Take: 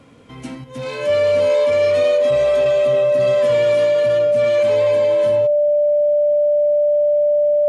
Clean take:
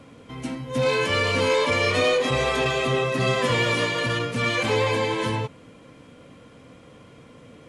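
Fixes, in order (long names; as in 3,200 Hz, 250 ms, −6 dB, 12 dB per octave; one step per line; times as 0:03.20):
notch filter 590 Hz, Q 30
level 0 dB, from 0:00.64 +5.5 dB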